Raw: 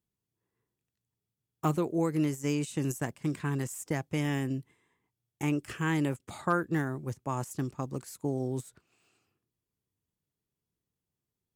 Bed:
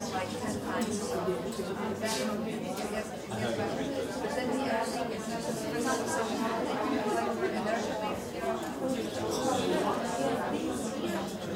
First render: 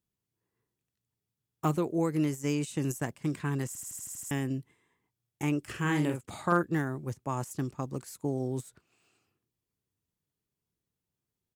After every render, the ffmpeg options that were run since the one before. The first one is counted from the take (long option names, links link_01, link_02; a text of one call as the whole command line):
ffmpeg -i in.wav -filter_complex "[0:a]asplit=3[link_01][link_02][link_03];[link_01]afade=type=out:start_time=5.73:duration=0.02[link_04];[link_02]asplit=2[link_05][link_06];[link_06]adelay=46,volume=-5.5dB[link_07];[link_05][link_07]amix=inputs=2:normalize=0,afade=type=in:start_time=5.73:duration=0.02,afade=type=out:start_time=6.61:duration=0.02[link_08];[link_03]afade=type=in:start_time=6.61:duration=0.02[link_09];[link_04][link_08][link_09]amix=inputs=3:normalize=0,asplit=9[link_10][link_11][link_12][link_13][link_14][link_15][link_16][link_17][link_18];[link_10]atrim=end=3.752[link_19];[link_11]atrim=start=3.668:end=3.752[link_20];[link_12]atrim=start=3.668:end=3.752[link_21];[link_13]atrim=start=3.668:end=3.752[link_22];[link_14]atrim=start=3.668:end=3.752[link_23];[link_15]atrim=start=3.668:end=3.752[link_24];[link_16]atrim=start=3.668:end=3.752[link_25];[link_17]atrim=start=3.668:end=3.752[link_26];[link_18]atrim=start=4.308[link_27];[link_19][link_20]acrossfade=duration=0.004:curve1=hsin:curve2=hsin[link_28];[link_28][link_21]acrossfade=duration=0.004:curve1=hsin:curve2=hsin[link_29];[link_29][link_22]acrossfade=duration=0.004:curve1=hsin:curve2=hsin[link_30];[link_30][link_23]acrossfade=duration=0.004:curve1=hsin:curve2=hsin[link_31];[link_31][link_24]acrossfade=duration=0.004:curve1=hsin:curve2=hsin[link_32];[link_32][link_25]acrossfade=duration=0.004:curve1=hsin:curve2=hsin[link_33];[link_33][link_26]acrossfade=duration=0.004:curve1=hsin:curve2=hsin[link_34];[link_34][link_27]acrossfade=duration=0.004:curve1=hsin:curve2=hsin" out.wav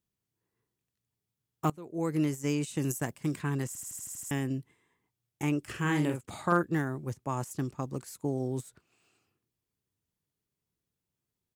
ffmpeg -i in.wav -filter_complex "[0:a]asettb=1/sr,asplit=3[link_01][link_02][link_03];[link_01]atrim=end=2.754[link_04];[link_02]atrim=start=2.75:end=3.42,asetpts=PTS-STARTPTS,afade=type=in:duration=0.004:curve=qsin,afade=type=out:start_time=0.666:duration=0.004:curve=qsin,highshelf=frequency=8400:gain=7[link_05];[link_03]atrim=start=3.416[link_06];[link_04][link_05]acrossfade=duration=0.004:curve1=hsin:curve2=qsin[link_07];[link_07][link_06]acrossfade=duration=0.004:curve1=qsin:curve2=hsin,asplit=2[link_08][link_09];[link_08]atrim=end=1.7,asetpts=PTS-STARTPTS,afade=type=out:start_time=1.696:duration=0.004:curve=hsin:silence=0.0944061[link_10];[link_09]atrim=start=1.7,asetpts=PTS-STARTPTS,afade=type=in:duration=0.4:curve=qua:silence=0.0944061[link_11];[link_10][link_11]concat=n=2:v=0:a=1" out.wav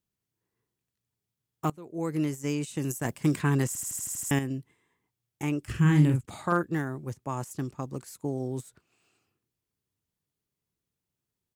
ffmpeg -i in.wav -filter_complex "[0:a]asettb=1/sr,asplit=3[link_01][link_02][link_03];[link_01]atrim=end=3.054[link_04];[link_02]atrim=start=3.05:end=4.39,asetpts=PTS-STARTPTS,afade=type=in:duration=0.004:curve=qsin,afade=type=out:start_time=1.336:duration=0.004:curve=qsin,acontrast=73[link_05];[link_03]atrim=start=4.386[link_06];[link_04][link_05]acrossfade=duration=0.004:curve1=hsin:curve2=qsin[link_07];[link_07][link_06]acrossfade=duration=0.004:curve1=qsin:curve2=hsin,asplit=3[link_08][link_09][link_10];[link_08]afade=type=out:start_time=5.67:duration=0.02[link_11];[link_09]asubboost=boost=6.5:cutoff=200,afade=type=in:start_time=5.67:duration=0.02,afade=type=out:start_time=6.25:duration=0.02[link_12];[link_10]afade=type=in:start_time=6.25:duration=0.02[link_13];[link_11][link_12][link_13]amix=inputs=3:normalize=0" out.wav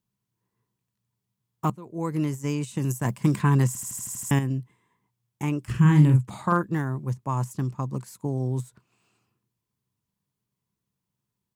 ffmpeg -i in.wav -af "equalizer=frequency=125:width_type=o:width=0.33:gain=10,equalizer=frequency=200:width_type=o:width=0.33:gain=10,equalizer=frequency=1000:width_type=o:width=0.33:gain=9" out.wav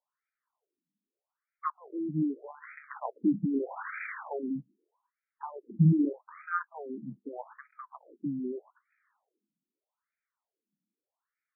ffmpeg -i in.wav -filter_complex "[0:a]acrossover=split=120|910[link_01][link_02][link_03];[link_03]acrusher=samples=8:mix=1:aa=0.000001:lfo=1:lforange=4.8:lforate=0.35[link_04];[link_01][link_02][link_04]amix=inputs=3:normalize=0,afftfilt=real='re*between(b*sr/1024,230*pow(1800/230,0.5+0.5*sin(2*PI*0.81*pts/sr))/1.41,230*pow(1800/230,0.5+0.5*sin(2*PI*0.81*pts/sr))*1.41)':imag='im*between(b*sr/1024,230*pow(1800/230,0.5+0.5*sin(2*PI*0.81*pts/sr))/1.41,230*pow(1800/230,0.5+0.5*sin(2*PI*0.81*pts/sr))*1.41)':win_size=1024:overlap=0.75" out.wav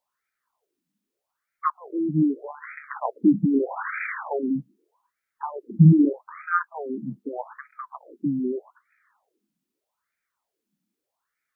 ffmpeg -i in.wav -af "volume=8.5dB" out.wav